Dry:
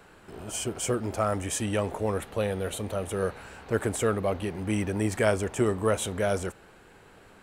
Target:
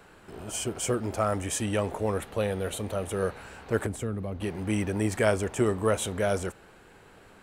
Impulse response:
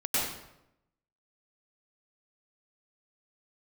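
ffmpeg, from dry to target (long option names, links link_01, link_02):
-filter_complex "[0:a]asettb=1/sr,asplit=3[link_01][link_02][link_03];[link_01]atrim=end=3.864[link_04];[link_02]atrim=start=3.86:end=4.41,asetpts=PTS-STARTPTS,afade=type=in:duration=0.004:curve=qsin,afade=type=out:start_time=0.546:duration=0.004:curve=qsin,acrossover=split=280[link_05][link_06];[link_06]acompressor=threshold=-39dB:ratio=5[link_07];[link_05][link_07]amix=inputs=2:normalize=0[link_08];[link_03]atrim=start=4.406[link_09];[link_04][link_08]acrossfade=duration=0.004:curve1=hsin:curve2=qsin[link_10];[link_10][link_09]acrossfade=duration=0.004:curve1=qsin:curve2=hsin"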